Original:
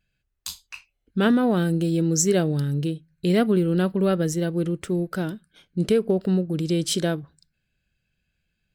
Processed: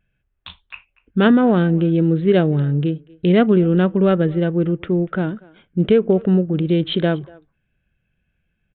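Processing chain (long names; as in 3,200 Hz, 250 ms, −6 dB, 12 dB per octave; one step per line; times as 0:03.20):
adaptive Wiener filter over 9 samples
far-end echo of a speakerphone 240 ms, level −22 dB
downsampling to 8,000 Hz
level +6 dB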